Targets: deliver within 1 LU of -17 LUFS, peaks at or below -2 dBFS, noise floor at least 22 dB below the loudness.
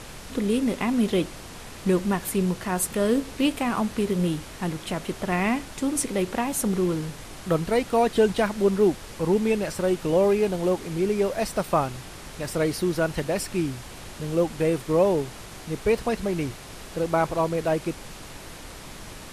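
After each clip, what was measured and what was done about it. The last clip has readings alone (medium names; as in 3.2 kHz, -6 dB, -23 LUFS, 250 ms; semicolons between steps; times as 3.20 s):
noise floor -41 dBFS; noise floor target -47 dBFS; loudness -25.0 LUFS; peak level -9.0 dBFS; loudness target -17.0 LUFS
-> noise print and reduce 6 dB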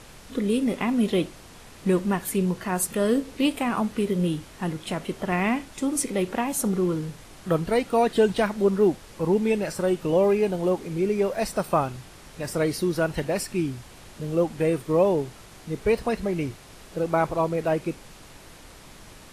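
noise floor -47 dBFS; loudness -25.0 LUFS; peak level -9.0 dBFS; loudness target -17.0 LUFS
-> trim +8 dB; peak limiter -2 dBFS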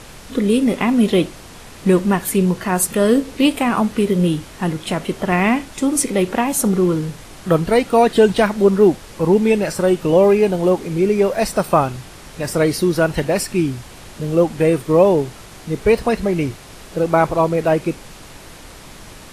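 loudness -17.0 LUFS; peak level -2.0 dBFS; noise floor -39 dBFS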